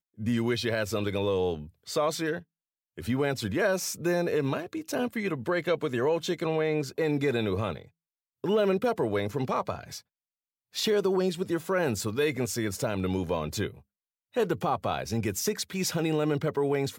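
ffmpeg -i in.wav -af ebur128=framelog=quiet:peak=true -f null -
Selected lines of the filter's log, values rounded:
Integrated loudness:
  I:         -29.0 LUFS
  Threshold: -39.2 LUFS
Loudness range:
  LRA:         1.8 LU
  Threshold: -49.5 LUFS
  LRA low:   -30.5 LUFS
  LRA high:  -28.7 LUFS
True peak:
  Peak:      -14.9 dBFS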